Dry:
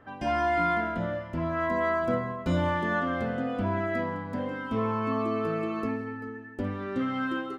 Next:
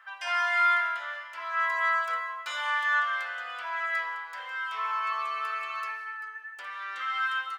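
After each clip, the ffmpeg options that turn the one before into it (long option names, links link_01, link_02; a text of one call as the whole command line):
ffmpeg -i in.wav -af "highpass=frequency=1200:width=0.5412,highpass=frequency=1200:width=1.3066,volume=7dB" out.wav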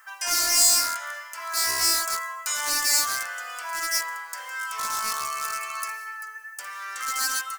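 ffmpeg -i in.wav -filter_complex "[0:a]acrossover=split=4000[link_01][link_02];[link_01]aeval=exprs='0.0473*(abs(mod(val(0)/0.0473+3,4)-2)-1)':channel_layout=same[link_03];[link_03][link_02]amix=inputs=2:normalize=0,aexciter=amount=7.5:drive=8.3:freq=5300,volume=1.5dB" out.wav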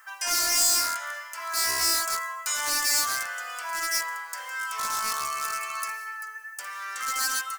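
ffmpeg -i in.wav -af "asoftclip=type=tanh:threshold=-16dB" out.wav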